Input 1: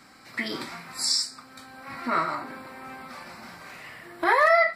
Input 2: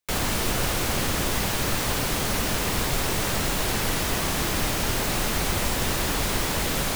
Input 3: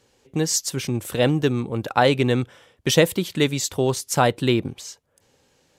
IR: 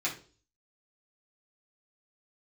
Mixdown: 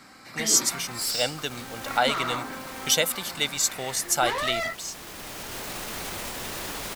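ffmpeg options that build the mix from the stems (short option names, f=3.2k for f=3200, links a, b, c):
-filter_complex "[0:a]alimiter=limit=-17.5dB:level=0:latency=1:release=93,volume=29.5dB,asoftclip=hard,volume=-29.5dB,volume=2.5dB[a];[1:a]lowshelf=f=170:g=-10.5,alimiter=level_in=1dB:limit=-24dB:level=0:latency=1,volume=-1dB,adelay=600,volume=0dB[b];[2:a]highpass=f=780:p=1,highshelf=f=3.8k:g=8.5,aecho=1:1:1.4:0.54,volume=-5dB,asplit=2[c][d];[d]apad=whole_len=333165[e];[b][e]sidechaincompress=threshold=-31dB:ratio=8:attack=16:release=1330[f];[a][f][c]amix=inputs=3:normalize=0"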